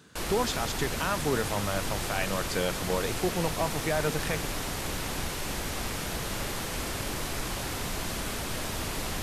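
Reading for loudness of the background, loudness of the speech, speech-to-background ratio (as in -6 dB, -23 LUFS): -33.0 LUFS, -31.5 LUFS, 1.5 dB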